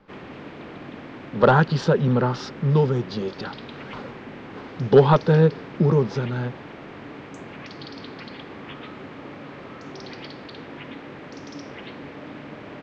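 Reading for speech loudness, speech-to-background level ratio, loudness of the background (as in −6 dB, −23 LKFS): −20.5 LKFS, 18.5 dB, −39.0 LKFS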